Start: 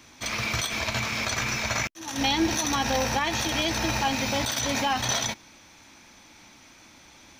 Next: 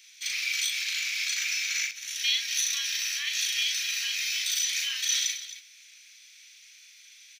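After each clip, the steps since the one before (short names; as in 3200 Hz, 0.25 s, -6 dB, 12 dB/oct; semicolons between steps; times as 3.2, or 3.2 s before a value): inverse Chebyshev high-pass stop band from 840 Hz, stop band 50 dB; on a send: loudspeakers at several distances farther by 13 m -3 dB, 92 m -12 dB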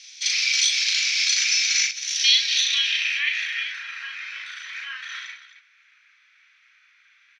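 hard clip -14.5 dBFS, distortion -55 dB; low-pass sweep 5300 Hz -> 1400 Hz, 2.22–3.86; gain +4.5 dB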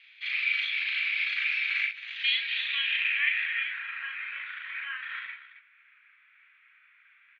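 inverse Chebyshev low-pass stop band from 5300 Hz, stop band 40 dB; gain -1 dB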